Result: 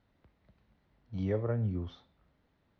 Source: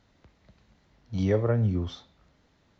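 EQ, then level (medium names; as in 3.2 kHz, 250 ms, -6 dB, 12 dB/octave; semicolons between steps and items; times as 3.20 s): distance through air 200 m; -7.0 dB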